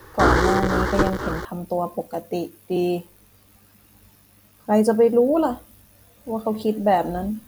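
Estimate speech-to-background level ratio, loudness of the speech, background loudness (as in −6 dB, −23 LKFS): −1.5 dB, −23.0 LKFS, −21.5 LKFS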